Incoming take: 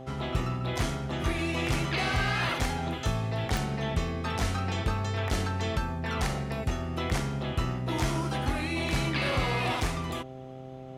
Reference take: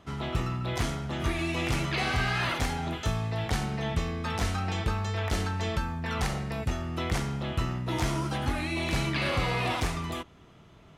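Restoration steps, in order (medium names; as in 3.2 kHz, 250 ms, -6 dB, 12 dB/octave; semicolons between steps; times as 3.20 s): de-click; de-hum 130.6 Hz, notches 6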